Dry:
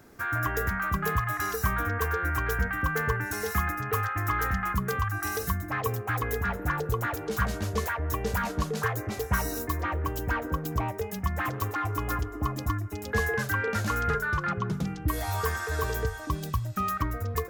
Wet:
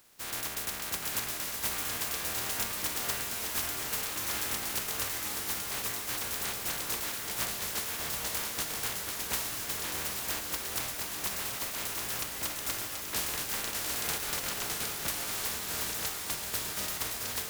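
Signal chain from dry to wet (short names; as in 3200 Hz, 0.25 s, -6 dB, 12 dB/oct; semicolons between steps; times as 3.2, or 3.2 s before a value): spectral contrast lowered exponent 0.13; diffused feedback echo 0.795 s, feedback 65%, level -4.5 dB; gain -7 dB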